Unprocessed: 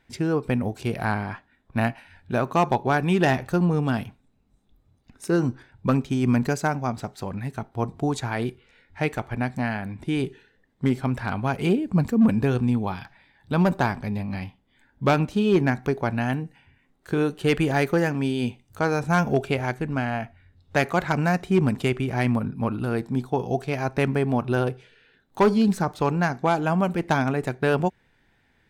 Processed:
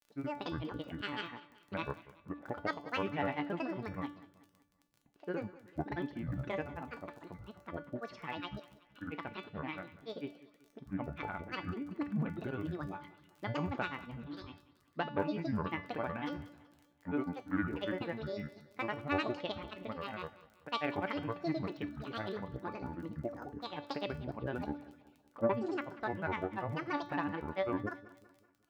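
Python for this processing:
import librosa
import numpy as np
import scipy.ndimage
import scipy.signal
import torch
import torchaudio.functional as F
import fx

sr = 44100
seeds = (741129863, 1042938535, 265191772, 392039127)

p1 = fx.highpass(x, sr, hz=230.0, slope=6)
p2 = fx.env_lowpass(p1, sr, base_hz=1400.0, full_db=-18.5)
p3 = scipy.signal.sosfilt(scipy.signal.butter(4, 3000.0, 'lowpass', fs=sr, output='sos'), p2)
p4 = fx.granulator(p3, sr, seeds[0], grain_ms=100.0, per_s=20.0, spray_ms=100.0, spread_st=12)
p5 = fx.dmg_crackle(p4, sr, seeds[1], per_s=22.0, level_db=-37.0)
p6 = fx.comb_fb(p5, sr, f0_hz=290.0, decay_s=0.42, harmonics='all', damping=0.0, mix_pct=80)
y = p6 + fx.echo_feedback(p6, sr, ms=189, feedback_pct=45, wet_db=-18, dry=0)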